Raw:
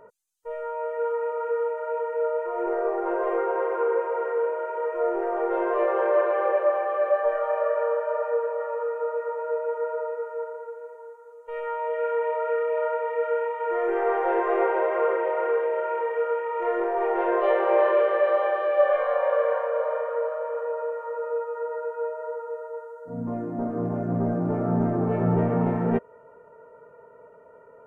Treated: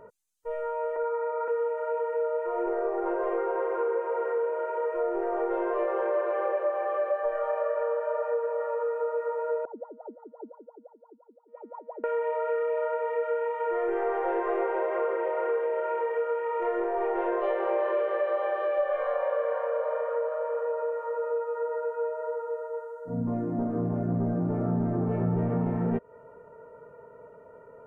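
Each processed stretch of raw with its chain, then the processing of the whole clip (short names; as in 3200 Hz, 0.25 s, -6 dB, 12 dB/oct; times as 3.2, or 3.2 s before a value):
0.96–1.48 steep low-pass 2500 Hz 48 dB/oct + comb 3 ms, depth 35%
9.65–12.04 steep high-pass 170 Hz + wah 5.8 Hz 220–1100 Hz, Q 16
whole clip: low shelf 280 Hz +7.5 dB; compressor 3:1, threshold -25 dBFS; gain -1 dB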